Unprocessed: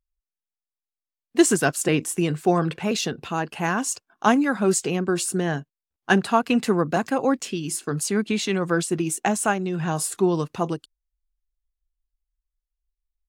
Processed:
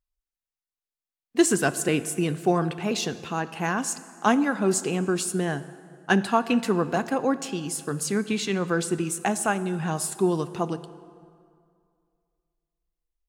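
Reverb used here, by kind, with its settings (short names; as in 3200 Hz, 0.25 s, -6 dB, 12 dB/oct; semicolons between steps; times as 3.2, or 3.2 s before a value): plate-style reverb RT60 2.3 s, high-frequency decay 0.65×, DRR 13.5 dB; gain -2.5 dB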